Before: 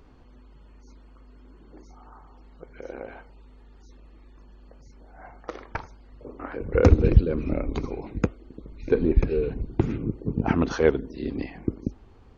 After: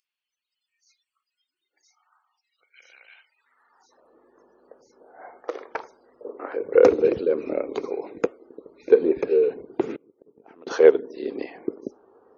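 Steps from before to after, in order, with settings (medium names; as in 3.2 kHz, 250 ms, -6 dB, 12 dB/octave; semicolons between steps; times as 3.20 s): high-pass sweep 2.7 kHz -> 440 Hz, 3.24–4.16 s; spectral noise reduction 22 dB; 9.94–10.67 s: inverted gate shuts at -25 dBFS, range -26 dB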